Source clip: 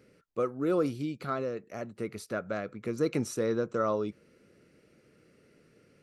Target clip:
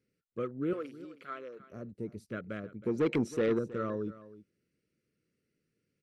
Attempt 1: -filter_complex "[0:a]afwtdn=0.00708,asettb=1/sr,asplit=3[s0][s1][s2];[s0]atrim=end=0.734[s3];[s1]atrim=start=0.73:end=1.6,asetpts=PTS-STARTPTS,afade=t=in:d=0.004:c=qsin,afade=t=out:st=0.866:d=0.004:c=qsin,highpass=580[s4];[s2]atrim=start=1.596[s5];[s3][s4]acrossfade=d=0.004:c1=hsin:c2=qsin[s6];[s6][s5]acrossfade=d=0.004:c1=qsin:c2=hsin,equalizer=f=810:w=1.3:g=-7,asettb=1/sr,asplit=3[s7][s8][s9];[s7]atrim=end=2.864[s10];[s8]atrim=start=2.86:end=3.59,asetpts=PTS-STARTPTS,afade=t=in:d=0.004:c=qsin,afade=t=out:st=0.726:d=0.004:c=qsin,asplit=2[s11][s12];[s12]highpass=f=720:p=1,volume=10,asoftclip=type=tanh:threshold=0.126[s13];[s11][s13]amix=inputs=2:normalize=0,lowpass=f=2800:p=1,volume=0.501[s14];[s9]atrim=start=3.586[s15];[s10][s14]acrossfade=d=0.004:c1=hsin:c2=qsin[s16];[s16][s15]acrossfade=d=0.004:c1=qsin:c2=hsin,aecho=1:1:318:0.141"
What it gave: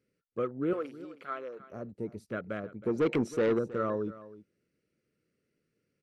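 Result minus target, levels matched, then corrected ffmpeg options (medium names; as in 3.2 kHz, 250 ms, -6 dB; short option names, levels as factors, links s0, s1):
1 kHz band +2.5 dB
-filter_complex "[0:a]afwtdn=0.00708,asettb=1/sr,asplit=3[s0][s1][s2];[s0]atrim=end=0.734[s3];[s1]atrim=start=0.73:end=1.6,asetpts=PTS-STARTPTS,afade=t=in:d=0.004:c=qsin,afade=t=out:st=0.866:d=0.004:c=qsin,highpass=580[s4];[s2]atrim=start=1.596[s5];[s3][s4]acrossfade=d=0.004:c1=hsin:c2=qsin[s6];[s6][s5]acrossfade=d=0.004:c1=qsin:c2=hsin,equalizer=f=810:w=1.3:g=-17,asettb=1/sr,asplit=3[s7][s8][s9];[s7]atrim=end=2.864[s10];[s8]atrim=start=2.86:end=3.59,asetpts=PTS-STARTPTS,afade=t=in:d=0.004:c=qsin,afade=t=out:st=0.726:d=0.004:c=qsin,asplit=2[s11][s12];[s12]highpass=f=720:p=1,volume=10,asoftclip=type=tanh:threshold=0.126[s13];[s11][s13]amix=inputs=2:normalize=0,lowpass=f=2800:p=1,volume=0.501[s14];[s9]atrim=start=3.586[s15];[s10][s14]acrossfade=d=0.004:c1=hsin:c2=qsin[s16];[s16][s15]acrossfade=d=0.004:c1=qsin:c2=hsin,aecho=1:1:318:0.141"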